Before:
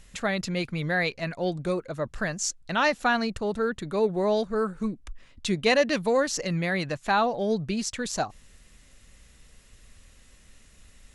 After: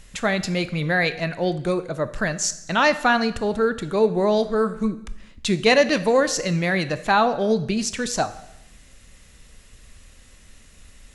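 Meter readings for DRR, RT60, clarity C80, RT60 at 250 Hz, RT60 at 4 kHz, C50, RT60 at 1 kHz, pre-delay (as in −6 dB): 12.0 dB, 0.90 s, 17.0 dB, 0.95 s, 0.85 s, 14.5 dB, 0.85 s, 14 ms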